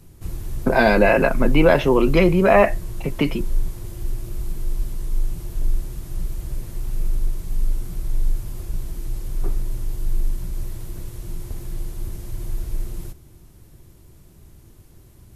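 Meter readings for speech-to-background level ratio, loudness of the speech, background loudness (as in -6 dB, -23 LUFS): 14.0 dB, -17.5 LUFS, -31.5 LUFS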